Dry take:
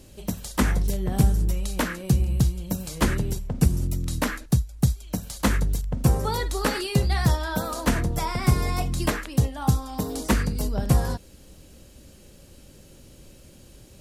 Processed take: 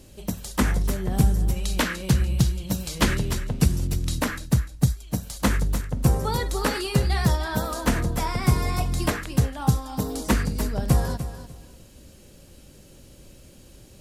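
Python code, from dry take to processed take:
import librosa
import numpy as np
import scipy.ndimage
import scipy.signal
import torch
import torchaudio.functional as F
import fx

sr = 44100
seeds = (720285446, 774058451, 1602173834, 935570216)

y = fx.peak_eq(x, sr, hz=3500.0, db=6.5, octaves=1.9, at=(1.56, 4.21))
y = fx.echo_feedback(y, sr, ms=297, feedback_pct=22, wet_db=-12.0)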